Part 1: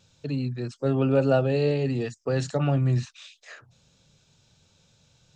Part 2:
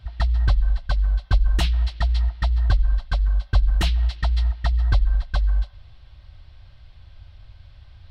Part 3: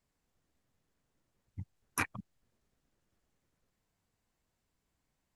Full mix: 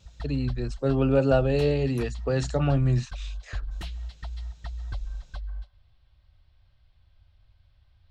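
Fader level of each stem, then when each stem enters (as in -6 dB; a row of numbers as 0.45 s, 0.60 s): 0.0 dB, -15.0 dB, -12.5 dB; 0.00 s, 0.00 s, 0.00 s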